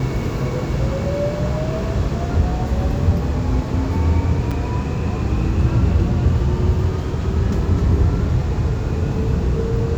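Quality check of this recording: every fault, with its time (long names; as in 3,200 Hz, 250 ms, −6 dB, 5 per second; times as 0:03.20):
0:04.51: drop-out 5 ms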